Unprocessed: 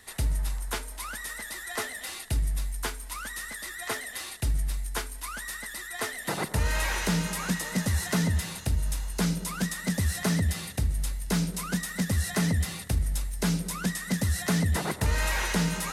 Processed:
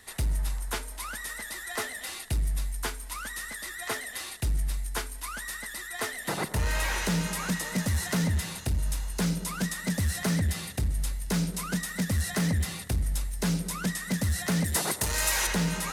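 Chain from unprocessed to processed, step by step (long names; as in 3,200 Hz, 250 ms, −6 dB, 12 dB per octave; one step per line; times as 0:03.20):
gain into a clipping stage and back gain 22 dB
0:14.64–0:15.47: bass and treble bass −6 dB, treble +10 dB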